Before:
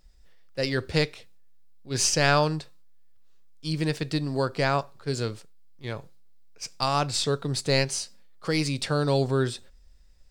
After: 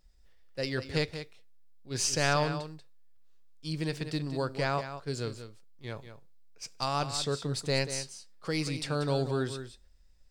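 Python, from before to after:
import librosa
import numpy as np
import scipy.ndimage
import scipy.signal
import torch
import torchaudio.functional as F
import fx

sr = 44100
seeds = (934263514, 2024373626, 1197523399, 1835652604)

y = x + 10.0 ** (-10.5 / 20.0) * np.pad(x, (int(187 * sr / 1000.0), 0))[:len(x)]
y = y * 10.0 ** (-6.0 / 20.0)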